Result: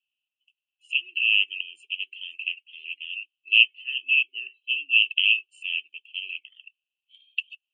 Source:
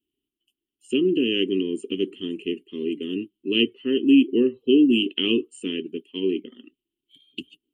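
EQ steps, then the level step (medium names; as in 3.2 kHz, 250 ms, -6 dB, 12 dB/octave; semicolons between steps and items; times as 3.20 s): ladder band-pass 2.7 kHz, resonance 90%; treble shelf 3 kHz +10.5 dB; 0.0 dB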